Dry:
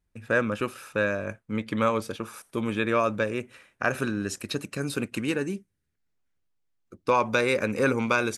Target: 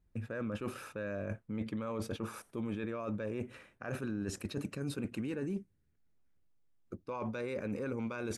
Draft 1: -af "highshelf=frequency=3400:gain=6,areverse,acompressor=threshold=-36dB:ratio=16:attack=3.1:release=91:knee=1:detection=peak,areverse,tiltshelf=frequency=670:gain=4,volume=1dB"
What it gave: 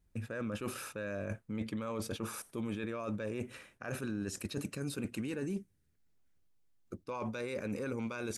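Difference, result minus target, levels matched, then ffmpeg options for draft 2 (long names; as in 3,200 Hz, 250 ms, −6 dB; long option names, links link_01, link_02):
8,000 Hz band +5.0 dB
-af "highshelf=frequency=3400:gain=-4.5,areverse,acompressor=threshold=-36dB:ratio=16:attack=3.1:release=91:knee=1:detection=peak,areverse,tiltshelf=frequency=670:gain=4,volume=1dB"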